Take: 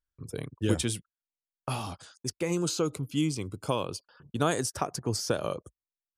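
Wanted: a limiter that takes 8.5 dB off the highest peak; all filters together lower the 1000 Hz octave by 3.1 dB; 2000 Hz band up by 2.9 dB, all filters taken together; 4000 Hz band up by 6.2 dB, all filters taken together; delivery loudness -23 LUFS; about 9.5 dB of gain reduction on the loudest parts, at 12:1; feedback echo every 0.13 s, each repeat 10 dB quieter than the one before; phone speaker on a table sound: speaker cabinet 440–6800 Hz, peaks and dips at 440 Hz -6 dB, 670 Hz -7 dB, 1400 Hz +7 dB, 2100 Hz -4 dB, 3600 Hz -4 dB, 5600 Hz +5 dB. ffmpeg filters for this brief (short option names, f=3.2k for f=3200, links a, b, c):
-af "equalizer=f=1k:t=o:g=-7.5,equalizer=f=2k:t=o:g=3,equalizer=f=4k:t=o:g=8,acompressor=threshold=-31dB:ratio=12,alimiter=level_in=2.5dB:limit=-24dB:level=0:latency=1,volume=-2.5dB,highpass=f=440:w=0.5412,highpass=f=440:w=1.3066,equalizer=f=440:t=q:w=4:g=-6,equalizer=f=670:t=q:w=4:g=-7,equalizer=f=1.4k:t=q:w=4:g=7,equalizer=f=2.1k:t=q:w=4:g=-4,equalizer=f=3.6k:t=q:w=4:g=-4,equalizer=f=5.6k:t=q:w=4:g=5,lowpass=f=6.8k:w=0.5412,lowpass=f=6.8k:w=1.3066,aecho=1:1:130|260|390|520:0.316|0.101|0.0324|0.0104,volume=18dB"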